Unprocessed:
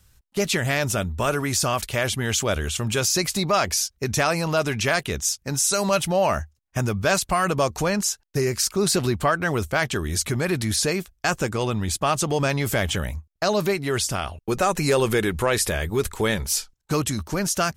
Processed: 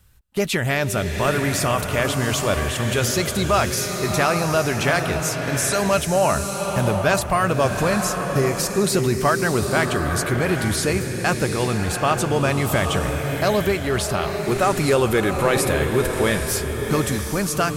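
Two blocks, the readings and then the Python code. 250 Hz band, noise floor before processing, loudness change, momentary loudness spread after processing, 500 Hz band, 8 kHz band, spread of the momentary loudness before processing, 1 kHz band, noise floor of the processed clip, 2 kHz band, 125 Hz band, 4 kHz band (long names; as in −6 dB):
+3.5 dB, −67 dBFS, +2.5 dB, 4 LU, +3.5 dB, −1.0 dB, 5 LU, +3.0 dB, −27 dBFS, +3.0 dB, +3.5 dB, 0.0 dB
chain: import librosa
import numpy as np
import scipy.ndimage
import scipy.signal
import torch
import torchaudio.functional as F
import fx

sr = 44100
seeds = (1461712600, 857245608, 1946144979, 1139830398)

y = fx.peak_eq(x, sr, hz=5900.0, db=-6.5, octaves=1.1)
y = fx.rev_bloom(y, sr, seeds[0], attack_ms=840, drr_db=4.0)
y = F.gain(torch.from_numpy(y), 2.0).numpy()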